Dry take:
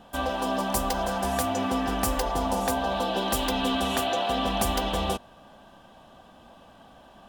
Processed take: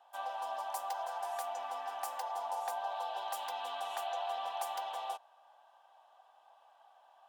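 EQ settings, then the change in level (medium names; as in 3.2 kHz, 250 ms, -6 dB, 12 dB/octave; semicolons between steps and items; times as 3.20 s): ladder high-pass 710 Hz, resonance 60%; -5.5 dB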